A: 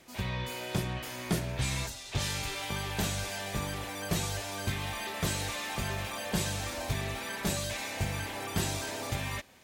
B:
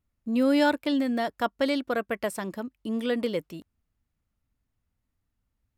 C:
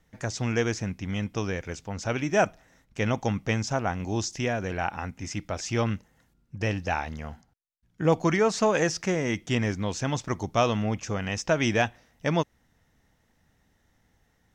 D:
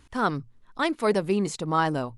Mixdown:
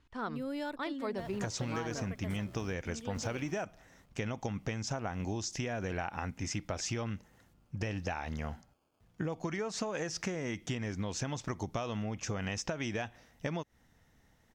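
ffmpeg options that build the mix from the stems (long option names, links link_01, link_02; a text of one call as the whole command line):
ffmpeg -i stem1.wav -i stem2.wav -i stem3.wav -i stem4.wav -filter_complex "[0:a]afwtdn=0.0126,acrusher=samples=23:mix=1:aa=0.000001,adelay=1000,volume=-15dB[link_01];[1:a]volume=-15.5dB,asplit=2[link_02][link_03];[2:a]acompressor=threshold=-27dB:ratio=6,adelay=1200,volume=0dB[link_04];[3:a]lowpass=5000,volume=-11.5dB[link_05];[link_03]apad=whole_len=469121[link_06];[link_01][link_06]sidechaingate=range=-22dB:threshold=-57dB:ratio=16:detection=peak[link_07];[link_07][link_02][link_04][link_05]amix=inputs=4:normalize=0,acompressor=threshold=-32dB:ratio=6" out.wav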